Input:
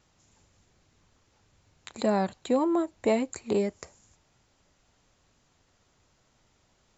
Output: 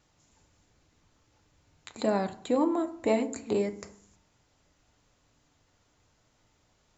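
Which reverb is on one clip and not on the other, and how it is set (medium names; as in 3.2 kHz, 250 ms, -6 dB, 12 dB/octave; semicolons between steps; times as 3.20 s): FDN reverb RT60 0.61 s, low-frequency decay 1.45×, high-frequency decay 0.5×, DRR 8 dB; trim -2 dB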